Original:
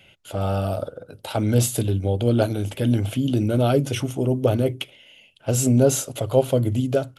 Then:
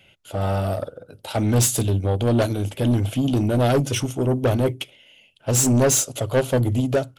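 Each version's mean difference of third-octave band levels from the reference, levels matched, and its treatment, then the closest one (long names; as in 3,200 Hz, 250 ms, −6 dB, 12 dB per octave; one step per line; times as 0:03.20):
2.5 dB: dynamic equaliser 6,400 Hz, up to +7 dB, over −42 dBFS, Q 0.9
soft clipping −18.5 dBFS, distortion −10 dB
expander for the loud parts 1.5 to 1, over −35 dBFS
level +5.5 dB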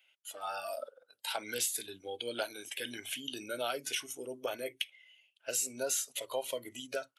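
9.5 dB: high-pass filter 1,100 Hz 12 dB per octave
noise reduction from a noise print of the clip's start 15 dB
downward compressor 2.5 to 1, threshold −33 dBFS, peak gain reduction 8 dB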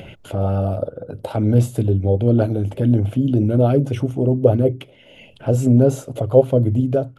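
6.0 dB: upward compression, threshold −23 dBFS
tilt shelving filter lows +9 dB
auto-filter bell 4.7 Hz 460–2,400 Hz +7 dB
level −4 dB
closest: first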